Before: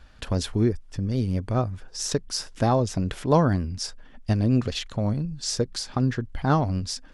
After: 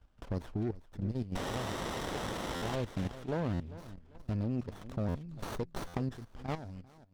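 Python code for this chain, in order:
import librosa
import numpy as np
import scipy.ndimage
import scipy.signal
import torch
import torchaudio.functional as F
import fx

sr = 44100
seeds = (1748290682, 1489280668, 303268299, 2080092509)

y = fx.fade_out_tail(x, sr, length_s=1.22)
y = fx.recorder_agc(y, sr, target_db=-17.5, rise_db_per_s=13.0, max_gain_db=30)
y = fx.spec_paint(y, sr, seeds[0], shape='noise', start_s=1.35, length_s=1.41, low_hz=1800.0, high_hz=4000.0, level_db=-16.0)
y = fx.high_shelf(y, sr, hz=2000.0, db=9.5, at=(4.81, 6.83))
y = fx.echo_feedback(y, sr, ms=396, feedback_pct=28, wet_db=-16.5)
y = fx.level_steps(y, sr, step_db=12)
y = fx.high_shelf(y, sr, hz=7900.0, db=-9.5)
y = fx.buffer_glitch(y, sr, at_s=(2.55, 3.53, 5.08, 5.87), block=512, repeats=5)
y = fx.running_max(y, sr, window=17)
y = y * librosa.db_to_amplitude(-8.0)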